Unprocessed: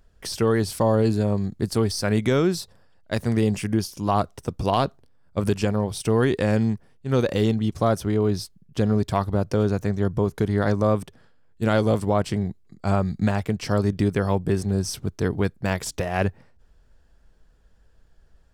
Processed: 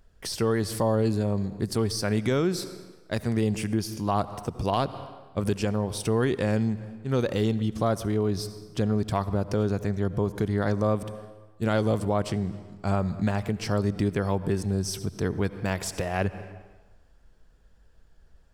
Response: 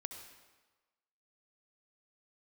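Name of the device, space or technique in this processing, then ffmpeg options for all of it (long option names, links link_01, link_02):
ducked reverb: -filter_complex "[0:a]asplit=3[link_01][link_02][link_03];[1:a]atrim=start_sample=2205[link_04];[link_02][link_04]afir=irnorm=-1:irlink=0[link_05];[link_03]apad=whole_len=817429[link_06];[link_05][link_06]sidechaincompress=threshold=-28dB:ratio=8:attack=5.7:release=132,volume=1dB[link_07];[link_01][link_07]amix=inputs=2:normalize=0,volume=-5.5dB"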